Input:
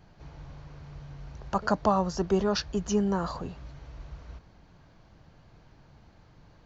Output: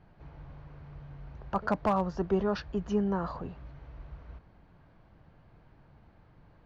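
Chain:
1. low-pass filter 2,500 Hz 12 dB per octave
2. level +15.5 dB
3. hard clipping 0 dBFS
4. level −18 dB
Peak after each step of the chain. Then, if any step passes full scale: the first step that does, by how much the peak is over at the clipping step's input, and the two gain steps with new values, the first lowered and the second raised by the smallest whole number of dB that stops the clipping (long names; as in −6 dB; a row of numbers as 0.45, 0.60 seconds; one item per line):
−10.5, +5.0, 0.0, −18.0 dBFS
step 2, 5.0 dB
step 2 +10.5 dB, step 4 −13 dB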